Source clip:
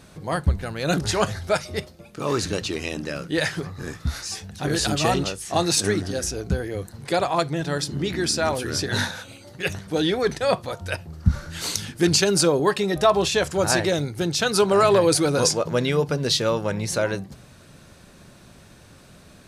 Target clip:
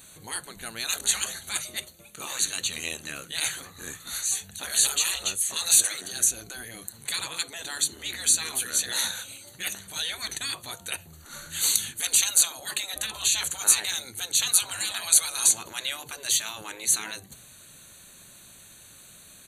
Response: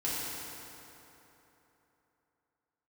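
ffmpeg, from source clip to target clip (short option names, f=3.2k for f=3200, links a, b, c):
-af "aresample=32000,aresample=44100,asuperstop=centerf=5200:order=12:qfactor=3.7,afftfilt=real='re*lt(hypot(re,im),0.178)':imag='im*lt(hypot(re,im),0.178)':win_size=1024:overlap=0.75,crystalizer=i=9:c=0,volume=-11dB"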